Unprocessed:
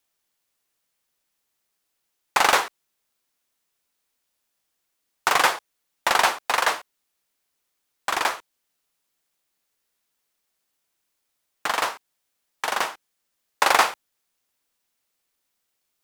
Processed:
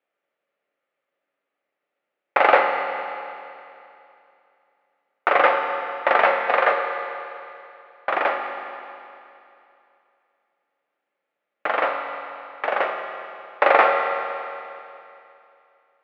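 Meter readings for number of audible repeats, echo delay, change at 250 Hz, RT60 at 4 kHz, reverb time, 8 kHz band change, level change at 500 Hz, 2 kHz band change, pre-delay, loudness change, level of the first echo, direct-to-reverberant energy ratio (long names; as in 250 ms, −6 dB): no echo audible, no echo audible, +3.0 dB, 2.7 s, 2.7 s, below −30 dB, +10.0 dB, +2.0 dB, 6 ms, +1.0 dB, no echo audible, 3.0 dB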